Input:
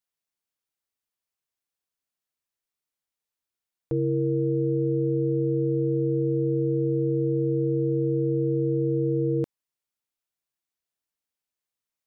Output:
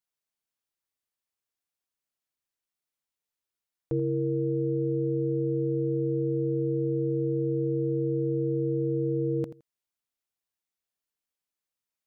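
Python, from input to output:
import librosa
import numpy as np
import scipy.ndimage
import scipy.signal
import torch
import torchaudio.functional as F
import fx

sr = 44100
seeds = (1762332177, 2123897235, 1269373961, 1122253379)

y = fx.echo_feedback(x, sr, ms=83, feedback_pct=17, wet_db=-14.0)
y = y * 10.0 ** (-2.0 / 20.0)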